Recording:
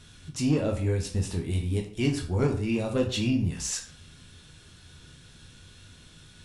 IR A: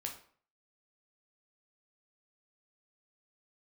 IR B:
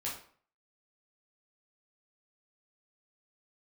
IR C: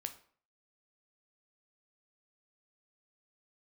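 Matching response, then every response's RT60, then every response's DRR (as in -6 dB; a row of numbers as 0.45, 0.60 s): A; 0.50, 0.50, 0.50 s; 1.0, -6.0, 7.0 dB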